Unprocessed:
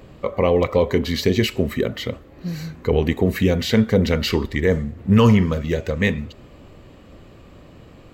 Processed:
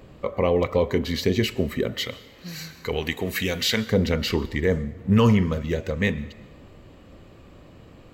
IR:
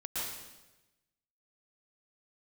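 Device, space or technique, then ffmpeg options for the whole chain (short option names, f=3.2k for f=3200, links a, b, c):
ducked reverb: -filter_complex "[0:a]asettb=1/sr,asplit=3[a][b][c];[a]atrim=end=1.984[d];[b]atrim=start=1.98:end=3.9,asetpts=PTS-STARTPTS,afade=t=in:d=0.004:c=qsin,afade=t=out:st=1.916:d=0.004:c=qsin,tiltshelf=f=970:g=-8[e];[c]atrim=start=3.896[f];[d][e]acrossfade=d=0.004:c1=hsin:c2=qsin[g];[g][f]acrossfade=d=0.004:c1=qsin:c2=hsin,asplit=3[h][i][j];[1:a]atrim=start_sample=2205[k];[i][k]afir=irnorm=-1:irlink=0[l];[j]apad=whole_len=358615[m];[l][m]sidechaincompress=threshold=-20dB:ratio=8:attack=12:release=1390,volume=-15dB[n];[h][n]amix=inputs=2:normalize=0,volume=-4dB"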